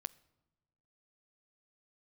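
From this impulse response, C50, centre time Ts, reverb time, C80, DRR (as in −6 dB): 22.0 dB, 1 ms, non-exponential decay, 24.0 dB, 17.0 dB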